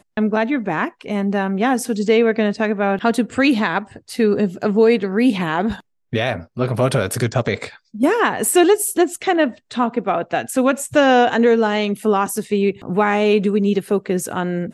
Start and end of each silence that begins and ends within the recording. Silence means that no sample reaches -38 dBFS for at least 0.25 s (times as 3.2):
5.8–6.13